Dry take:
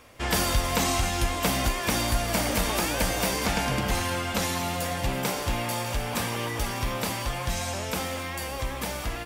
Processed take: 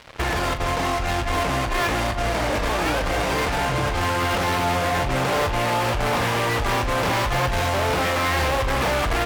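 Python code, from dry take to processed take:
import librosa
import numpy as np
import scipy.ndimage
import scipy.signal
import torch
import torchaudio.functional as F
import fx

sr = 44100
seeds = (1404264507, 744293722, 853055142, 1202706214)

y = scipy.signal.sosfilt(scipy.signal.butter(2, 2200.0, 'lowpass', fs=sr, output='sos'), x)
y = fx.peak_eq(y, sr, hz=210.0, db=-12.5, octaves=0.4)
y = fx.over_compress(y, sr, threshold_db=-34.0, ratio=-1.0)
y = fx.fuzz(y, sr, gain_db=40.0, gate_db=-46.0)
y = fx.doubler(y, sr, ms=39.0, db=-11)
y = y * librosa.db_to_amplitude(-6.5)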